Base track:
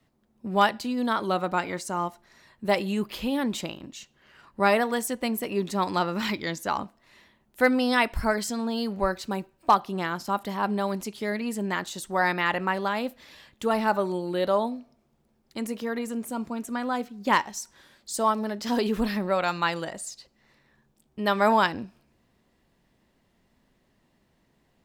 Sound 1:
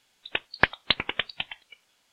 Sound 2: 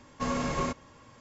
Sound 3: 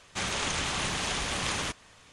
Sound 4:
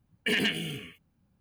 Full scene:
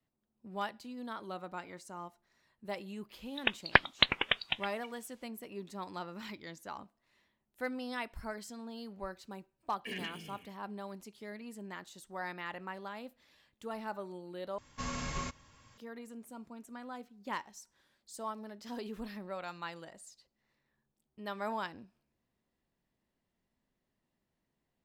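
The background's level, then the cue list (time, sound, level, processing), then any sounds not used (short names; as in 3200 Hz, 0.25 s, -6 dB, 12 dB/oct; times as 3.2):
base track -16.5 dB
3.12 add 1 -2 dB
9.59 add 4 -15 dB
14.58 replace with 2 -1.5 dB + bell 440 Hz -12 dB 2.9 oct
not used: 3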